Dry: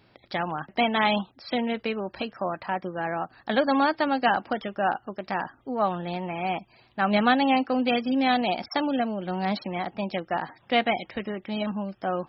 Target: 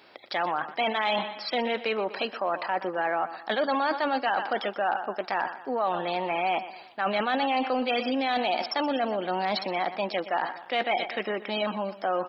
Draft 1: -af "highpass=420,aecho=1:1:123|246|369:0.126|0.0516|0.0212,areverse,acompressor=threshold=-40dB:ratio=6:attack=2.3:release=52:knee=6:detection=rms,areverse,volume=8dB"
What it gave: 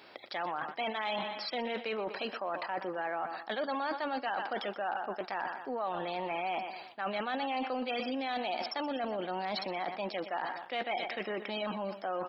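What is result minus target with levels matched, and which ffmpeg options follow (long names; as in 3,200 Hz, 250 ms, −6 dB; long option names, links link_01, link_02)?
downward compressor: peak gain reduction +8.5 dB
-af "highpass=420,aecho=1:1:123|246|369:0.126|0.0516|0.0212,areverse,acompressor=threshold=-30dB:ratio=6:attack=2.3:release=52:knee=6:detection=rms,areverse,volume=8dB"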